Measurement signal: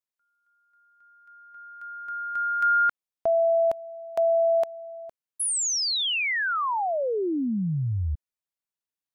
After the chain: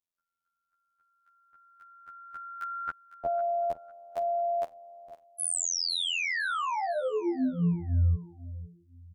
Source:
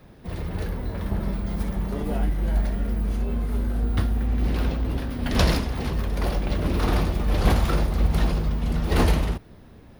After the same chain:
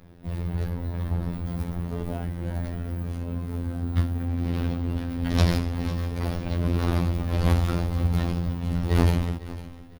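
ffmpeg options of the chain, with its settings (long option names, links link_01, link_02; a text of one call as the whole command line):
ffmpeg -i in.wav -filter_complex "[0:a]lowshelf=frequency=260:gain=6.5,afftfilt=real='hypot(re,im)*cos(PI*b)':imag='0':win_size=2048:overlap=0.75,asplit=2[link_01][link_02];[link_02]aecho=0:1:503|1006|1509:0.158|0.0444|0.0124[link_03];[link_01][link_03]amix=inputs=2:normalize=0,volume=-1.5dB" out.wav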